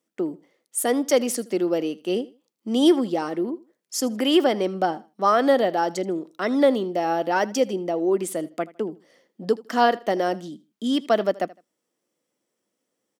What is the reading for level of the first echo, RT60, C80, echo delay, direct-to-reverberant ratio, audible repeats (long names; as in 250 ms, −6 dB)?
−20.5 dB, no reverb audible, no reverb audible, 79 ms, no reverb audible, 2